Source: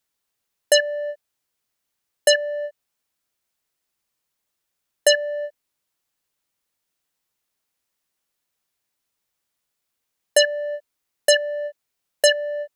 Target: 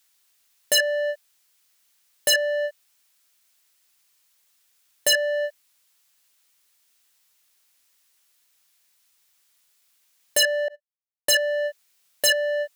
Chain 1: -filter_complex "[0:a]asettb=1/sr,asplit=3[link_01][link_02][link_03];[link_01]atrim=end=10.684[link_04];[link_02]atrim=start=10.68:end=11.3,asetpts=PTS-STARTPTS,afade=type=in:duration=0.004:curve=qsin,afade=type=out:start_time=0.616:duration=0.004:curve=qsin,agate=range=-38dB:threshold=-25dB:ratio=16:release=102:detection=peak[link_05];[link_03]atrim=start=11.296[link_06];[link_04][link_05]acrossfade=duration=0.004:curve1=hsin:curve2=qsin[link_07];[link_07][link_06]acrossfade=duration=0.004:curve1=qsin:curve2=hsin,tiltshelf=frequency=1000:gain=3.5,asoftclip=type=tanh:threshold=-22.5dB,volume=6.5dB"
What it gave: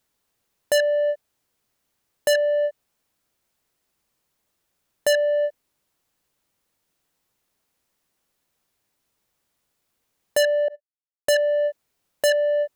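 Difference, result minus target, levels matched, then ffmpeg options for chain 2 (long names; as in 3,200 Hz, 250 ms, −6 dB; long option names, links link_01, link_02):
1,000 Hz band +3.5 dB
-filter_complex "[0:a]asettb=1/sr,asplit=3[link_01][link_02][link_03];[link_01]atrim=end=10.684[link_04];[link_02]atrim=start=10.68:end=11.3,asetpts=PTS-STARTPTS,afade=type=in:duration=0.004:curve=qsin,afade=type=out:start_time=0.616:duration=0.004:curve=qsin,agate=range=-38dB:threshold=-25dB:ratio=16:release=102:detection=peak[link_05];[link_03]atrim=start=11.296[link_06];[link_04][link_05]acrossfade=duration=0.004:curve1=hsin:curve2=qsin[link_07];[link_07][link_06]acrossfade=duration=0.004:curve1=qsin:curve2=hsin,tiltshelf=frequency=1000:gain=-7.5,asoftclip=type=tanh:threshold=-22.5dB,volume=6.5dB"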